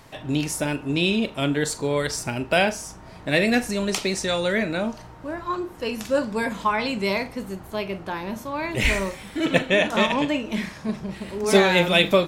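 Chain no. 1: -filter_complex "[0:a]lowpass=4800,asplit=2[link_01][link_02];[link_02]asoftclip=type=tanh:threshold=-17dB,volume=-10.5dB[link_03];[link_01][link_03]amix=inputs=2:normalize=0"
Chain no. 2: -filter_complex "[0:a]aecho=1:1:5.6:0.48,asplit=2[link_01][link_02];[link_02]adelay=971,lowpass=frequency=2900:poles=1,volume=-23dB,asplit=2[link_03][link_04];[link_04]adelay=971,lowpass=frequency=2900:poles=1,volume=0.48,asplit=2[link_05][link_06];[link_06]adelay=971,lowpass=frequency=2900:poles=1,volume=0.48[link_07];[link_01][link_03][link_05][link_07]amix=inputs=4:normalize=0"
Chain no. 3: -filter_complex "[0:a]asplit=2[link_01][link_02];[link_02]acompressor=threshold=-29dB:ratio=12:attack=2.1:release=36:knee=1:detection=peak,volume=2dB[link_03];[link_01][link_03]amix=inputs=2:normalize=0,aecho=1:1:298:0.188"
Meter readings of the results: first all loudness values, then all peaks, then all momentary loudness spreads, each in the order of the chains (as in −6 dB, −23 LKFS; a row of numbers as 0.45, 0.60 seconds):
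−22.0, −22.5, −20.5 LKFS; −2.0, −1.0, −1.5 dBFS; 11, 12, 9 LU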